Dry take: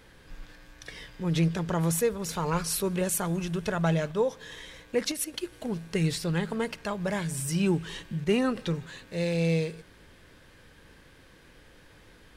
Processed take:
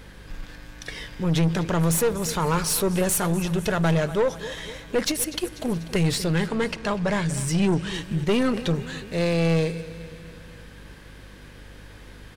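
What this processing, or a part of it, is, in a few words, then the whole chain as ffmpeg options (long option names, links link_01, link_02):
valve amplifier with mains hum: -filter_complex "[0:a]asettb=1/sr,asplit=3[link_01][link_02][link_03];[link_01]atrim=end=6.354[link_04];[link_02]atrim=start=6.35:end=7.94,asetpts=PTS-STARTPTS,afade=type=in:duration=0.004:curve=qsin,afade=type=out:start_time=1.586:duration=0.004:curve=qsin,lowpass=7800[link_05];[link_03]atrim=start=7.936[link_06];[link_04][link_05]acrossfade=duration=0.004:curve1=hsin:curve2=qsin[link_07];[link_07][link_06]acrossfade=duration=0.004:curve1=qsin:curve2=hsin,aecho=1:1:245|490|735|980|1225:0.126|0.0705|0.0395|0.0221|0.0124,aeval=exprs='(tanh(17.8*val(0)+0.35)-tanh(0.35))/17.8':channel_layout=same,aeval=exprs='val(0)+0.002*(sin(2*PI*50*n/s)+sin(2*PI*2*50*n/s)/2+sin(2*PI*3*50*n/s)/3+sin(2*PI*4*50*n/s)/4+sin(2*PI*5*50*n/s)/5)':channel_layout=same,volume=8.5dB"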